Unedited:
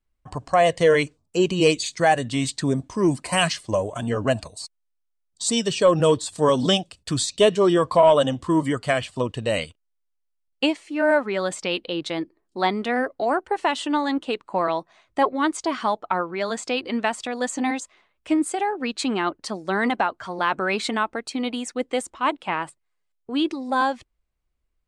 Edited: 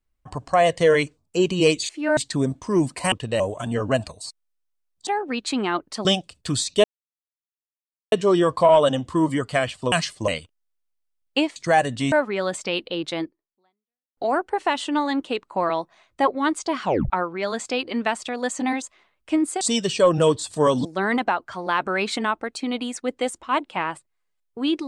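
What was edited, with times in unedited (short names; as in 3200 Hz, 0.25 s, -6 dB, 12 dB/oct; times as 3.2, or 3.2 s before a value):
1.89–2.45 swap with 10.82–11.1
3.4–3.76 swap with 9.26–9.54
5.43–6.67 swap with 18.59–19.57
7.46 insert silence 1.28 s
12.21–13.15 fade out exponential
15.81 tape stop 0.27 s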